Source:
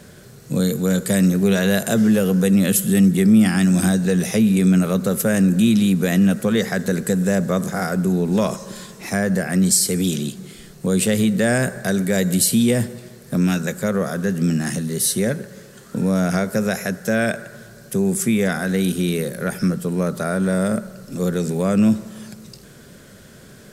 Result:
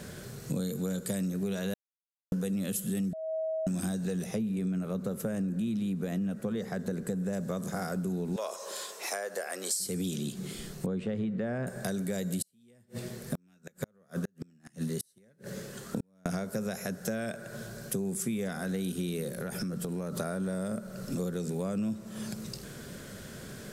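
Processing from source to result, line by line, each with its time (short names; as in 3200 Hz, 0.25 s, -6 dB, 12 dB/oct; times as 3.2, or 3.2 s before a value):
1.74–2.32 mute
3.13–3.67 bleep 639 Hz -22.5 dBFS
4.24–7.33 high shelf 2200 Hz -9 dB
8.36–9.8 HPF 460 Hz 24 dB/oct
10.86–11.67 LPF 1900 Hz
12.42–16.26 flipped gate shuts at -13 dBFS, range -42 dB
19.33–20.17 compressor, threshold -28 dBFS
whole clip: compressor, threshold -31 dBFS; dynamic EQ 1900 Hz, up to -5 dB, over -51 dBFS, Q 1.6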